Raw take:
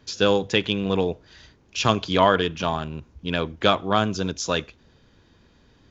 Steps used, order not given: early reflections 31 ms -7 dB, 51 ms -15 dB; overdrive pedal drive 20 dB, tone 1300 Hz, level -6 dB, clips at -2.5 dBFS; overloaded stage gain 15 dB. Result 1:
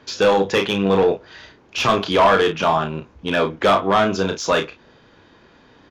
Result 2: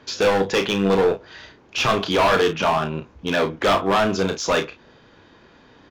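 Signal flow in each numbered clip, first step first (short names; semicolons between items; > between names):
overloaded stage > early reflections > overdrive pedal; overdrive pedal > overloaded stage > early reflections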